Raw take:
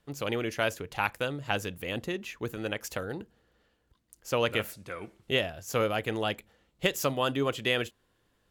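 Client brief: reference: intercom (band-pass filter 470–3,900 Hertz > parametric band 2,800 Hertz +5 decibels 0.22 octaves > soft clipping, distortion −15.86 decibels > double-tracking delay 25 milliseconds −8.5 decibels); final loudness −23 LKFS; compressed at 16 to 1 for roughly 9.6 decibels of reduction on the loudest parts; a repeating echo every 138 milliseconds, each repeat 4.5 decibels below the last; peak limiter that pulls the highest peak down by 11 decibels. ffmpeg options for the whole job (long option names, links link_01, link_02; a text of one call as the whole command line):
ffmpeg -i in.wav -filter_complex "[0:a]acompressor=threshold=-31dB:ratio=16,alimiter=level_in=3.5dB:limit=-24dB:level=0:latency=1,volume=-3.5dB,highpass=470,lowpass=3900,equalizer=frequency=2800:width_type=o:width=0.22:gain=5,aecho=1:1:138|276|414|552|690|828|966|1104|1242:0.596|0.357|0.214|0.129|0.0772|0.0463|0.0278|0.0167|0.01,asoftclip=threshold=-32.5dB,asplit=2[link_01][link_02];[link_02]adelay=25,volume=-8.5dB[link_03];[link_01][link_03]amix=inputs=2:normalize=0,volume=19dB" out.wav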